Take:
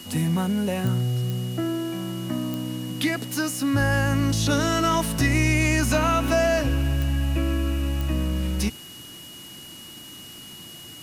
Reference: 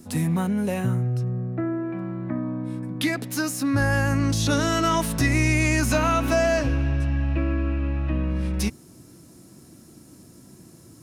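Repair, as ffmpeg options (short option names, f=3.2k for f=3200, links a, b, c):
-af "adeclick=t=4,bandreject=f=2.9k:w=30,afwtdn=0.0056"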